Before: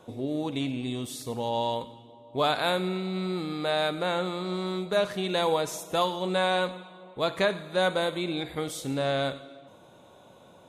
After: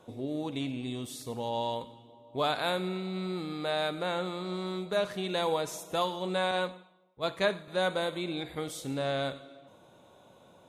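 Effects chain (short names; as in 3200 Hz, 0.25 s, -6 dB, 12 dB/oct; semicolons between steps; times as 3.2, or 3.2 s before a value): 6.51–7.68 three-band expander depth 100%; gain -4 dB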